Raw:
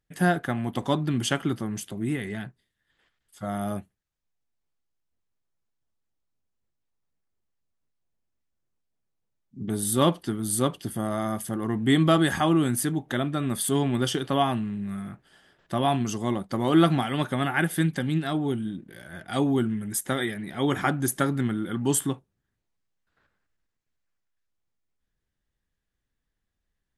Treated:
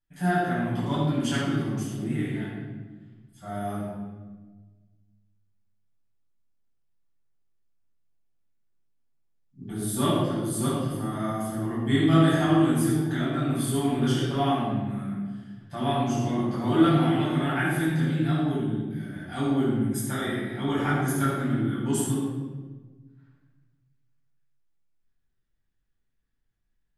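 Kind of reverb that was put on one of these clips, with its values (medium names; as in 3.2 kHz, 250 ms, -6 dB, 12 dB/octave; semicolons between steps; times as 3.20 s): simulated room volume 1000 m³, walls mixed, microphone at 8.4 m; trim -15.5 dB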